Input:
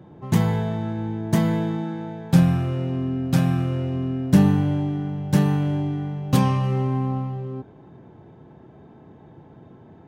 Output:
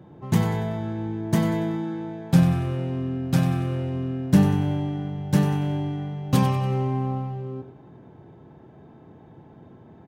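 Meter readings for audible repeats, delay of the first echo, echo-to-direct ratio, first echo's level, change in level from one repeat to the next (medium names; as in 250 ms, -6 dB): 4, 94 ms, -10.5 dB, -11.5 dB, -7.5 dB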